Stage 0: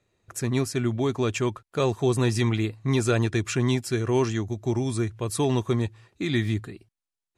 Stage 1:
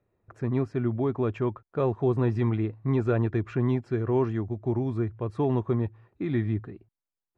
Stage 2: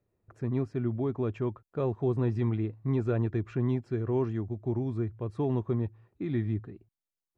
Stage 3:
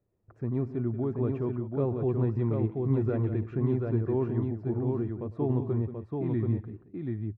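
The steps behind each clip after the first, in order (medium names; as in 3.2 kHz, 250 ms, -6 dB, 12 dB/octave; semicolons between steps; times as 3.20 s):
low-pass 1.3 kHz 12 dB/octave; trim -1.5 dB
peaking EQ 1.3 kHz -4.5 dB 2.7 oct; trim -2.5 dB
low-pass 1.1 kHz 6 dB/octave; multi-tap echo 101/181/733 ms -19.5/-12/-3.5 dB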